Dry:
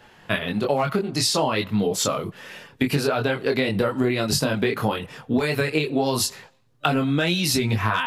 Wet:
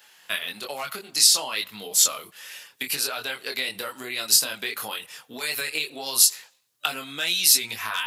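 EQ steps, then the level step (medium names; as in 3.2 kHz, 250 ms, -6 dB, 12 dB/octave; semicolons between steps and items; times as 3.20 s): differentiator; +8.5 dB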